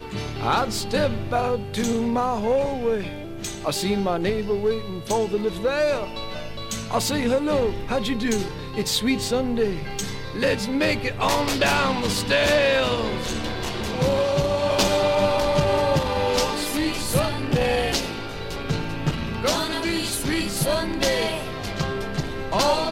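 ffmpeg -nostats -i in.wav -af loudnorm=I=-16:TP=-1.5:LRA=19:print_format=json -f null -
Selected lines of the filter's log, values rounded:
"input_i" : "-23.5",
"input_tp" : "-6.2",
"input_lra" : "3.4",
"input_thresh" : "-33.5",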